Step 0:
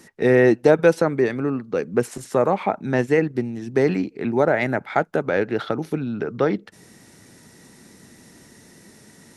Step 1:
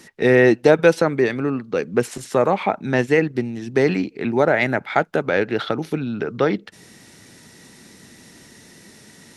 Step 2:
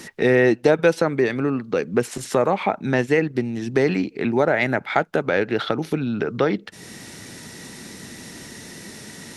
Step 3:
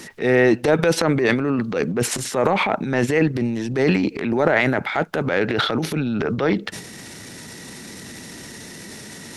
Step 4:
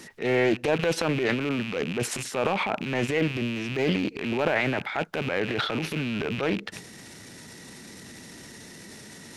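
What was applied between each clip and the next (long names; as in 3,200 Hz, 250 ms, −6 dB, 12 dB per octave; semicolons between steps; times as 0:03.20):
parametric band 3,300 Hz +6 dB 1.7 octaves; level +1 dB
downward compressor 1.5 to 1, threshold −39 dBFS, peak gain reduction 11 dB; level +7.5 dB
transient designer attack −7 dB, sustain +10 dB; level +1 dB
loose part that buzzes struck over −33 dBFS, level −16 dBFS; highs frequency-modulated by the lows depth 0.21 ms; level −7 dB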